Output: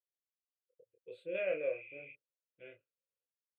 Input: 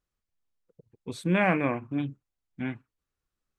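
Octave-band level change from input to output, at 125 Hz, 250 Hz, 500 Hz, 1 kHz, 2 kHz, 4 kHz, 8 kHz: below −30 dB, −27.0 dB, −5.0 dB, −27.0 dB, −13.5 dB, −15.0 dB, can't be measured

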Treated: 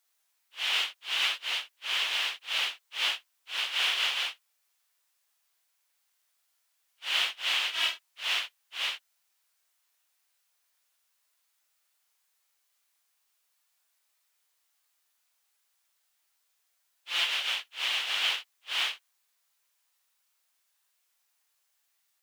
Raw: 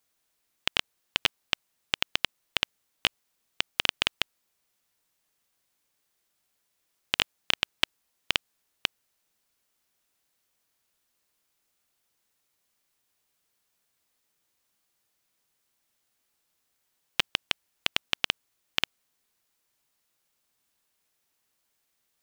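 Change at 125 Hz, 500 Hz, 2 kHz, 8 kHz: below −25 dB, −6.0 dB, +1.5 dB, +1.5 dB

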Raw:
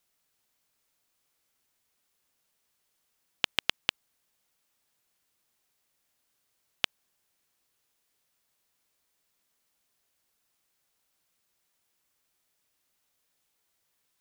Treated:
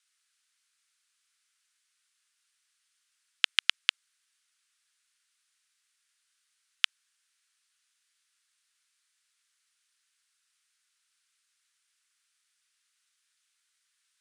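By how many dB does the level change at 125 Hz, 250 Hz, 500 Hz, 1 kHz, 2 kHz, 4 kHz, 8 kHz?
below −40 dB, below −40 dB, below −25 dB, −3.0 dB, +3.5 dB, +3.5 dB, +3.0 dB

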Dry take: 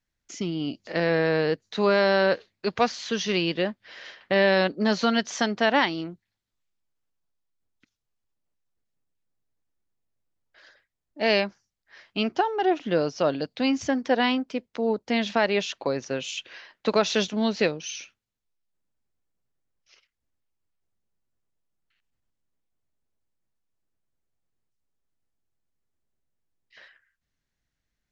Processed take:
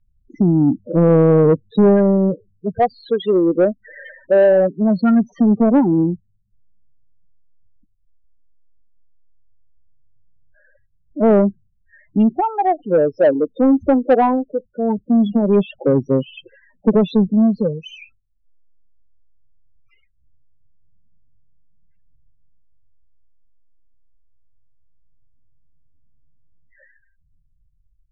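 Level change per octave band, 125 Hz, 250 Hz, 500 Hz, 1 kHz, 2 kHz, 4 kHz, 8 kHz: +14.5 dB, +12.5 dB, +8.5 dB, +5.5 dB, −7.0 dB, below −10 dB, can't be measured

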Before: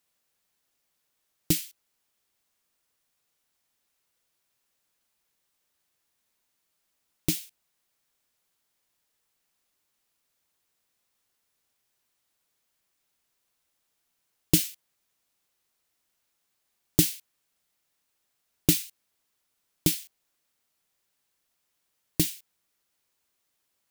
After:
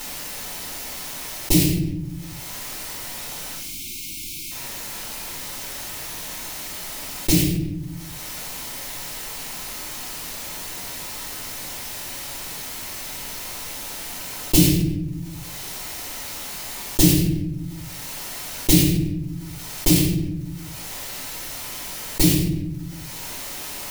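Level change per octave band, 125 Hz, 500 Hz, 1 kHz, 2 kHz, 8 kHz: +14.0, +11.0, +21.0, +14.0, +9.5 decibels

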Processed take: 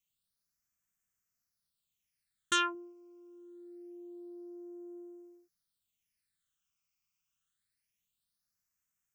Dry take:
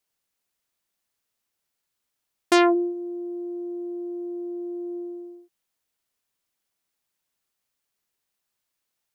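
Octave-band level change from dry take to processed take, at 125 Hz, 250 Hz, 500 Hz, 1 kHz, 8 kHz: can't be measured, −20.0 dB, −20.5 dB, −9.5 dB, −2.5 dB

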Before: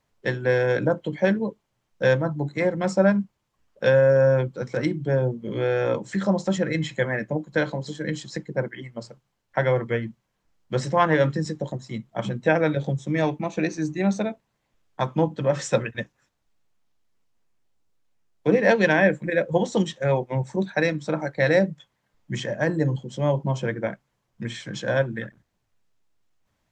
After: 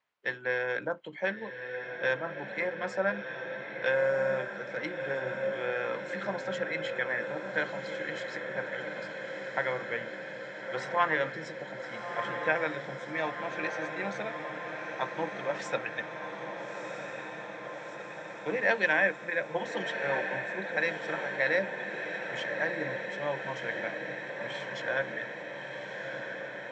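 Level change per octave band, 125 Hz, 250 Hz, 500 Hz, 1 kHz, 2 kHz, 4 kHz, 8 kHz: −20.5, −16.0, −9.5, −5.0, −1.5, −5.0, −12.5 decibels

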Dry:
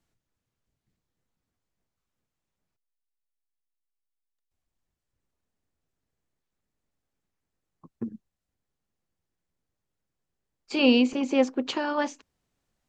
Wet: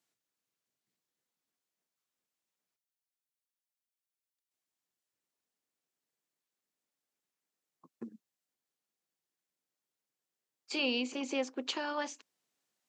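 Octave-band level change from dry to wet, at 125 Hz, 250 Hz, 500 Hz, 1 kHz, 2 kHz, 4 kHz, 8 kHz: −16.0 dB, −14.0 dB, −11.5 dB, −8.5 dB, −6.5 dB, −5.5 dB, can't be measured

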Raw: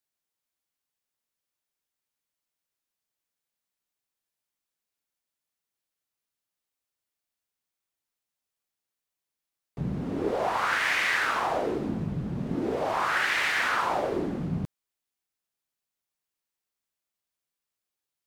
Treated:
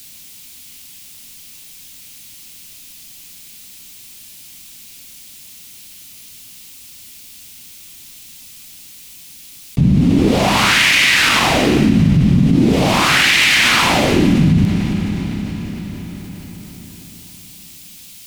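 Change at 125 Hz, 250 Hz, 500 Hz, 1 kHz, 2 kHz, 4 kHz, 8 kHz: +20.5, +19.5, +10.5, +9.5, +13.0, +20.5, +21.5 decibels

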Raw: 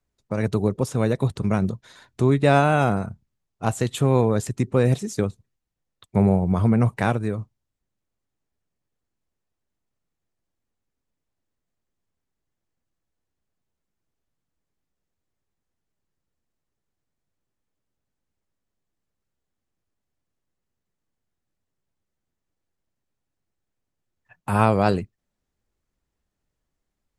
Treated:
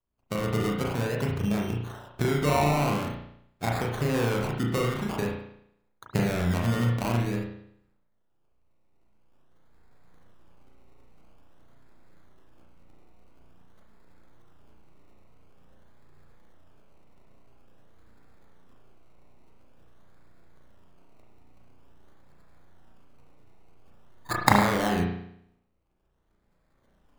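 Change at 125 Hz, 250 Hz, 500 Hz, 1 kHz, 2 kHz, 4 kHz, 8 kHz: −5.5, −5.5, −6.0, −3.0, −1.0, +2.5, −1.0 decibels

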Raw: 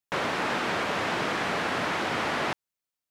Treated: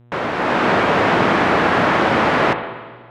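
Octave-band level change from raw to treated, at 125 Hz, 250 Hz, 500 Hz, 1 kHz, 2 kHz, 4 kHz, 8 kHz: +14.0, +14.0, +13.5, +12.5, +10.5, +6.5, +1.0 decibels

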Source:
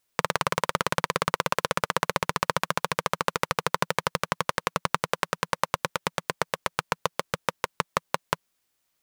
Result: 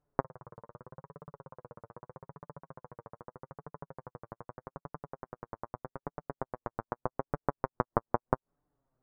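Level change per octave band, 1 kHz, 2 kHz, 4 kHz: −12.0 dB, −21.5 dB, below −40 dB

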